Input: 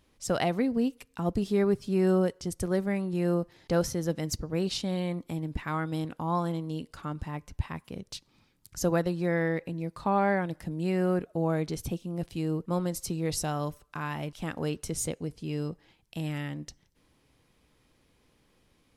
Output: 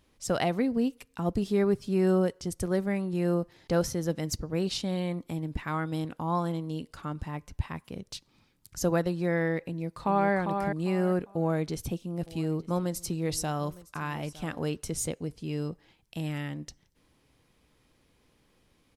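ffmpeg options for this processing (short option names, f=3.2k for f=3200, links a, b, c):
-filter_complex "[0:a]asplit=2[a][b];[b]afade=t=in:st=9.6:d=0.01,afade=t=out:st=10.32:d=0.01,aecho=0:1:400|800|1200:0.530884|0.132721|0.0331803[c];[a][c]amix=inputs=2:normalize=0,asettb=1/sr,asplit=3[d][e][f];[d]atrim=end=11.294[g];[e]atrim=start=11.29:end=14.83,asetpts=PTS-STARTPTS,afade=t=in:d=0.004:c=qsin,afade=t=out:st=3.536:d=0.004:c=qsin,aecho=1:1:911:0.106,atrim=end_sample=156114[h];[f]atrim=start=14.826[i];[g][h]acrossfade=d=0.004:c1=hsin:c2=qsin[j];[j][i]acrossfade=d=0.004:c1=qsin:c2=hsin"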